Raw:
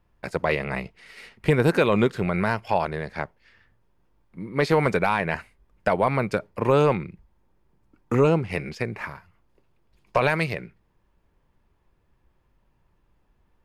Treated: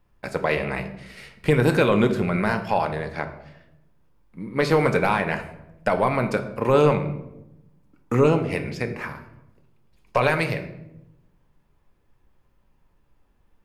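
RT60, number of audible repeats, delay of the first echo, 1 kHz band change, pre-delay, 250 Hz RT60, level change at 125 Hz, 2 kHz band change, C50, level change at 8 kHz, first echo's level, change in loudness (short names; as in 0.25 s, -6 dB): 0.90 s, none, none, +1.0 dB, 4 ms, 1.2 s, +1.5 dB, +1.0 dB, 11.0 dB, n/a, none, +1.5 dB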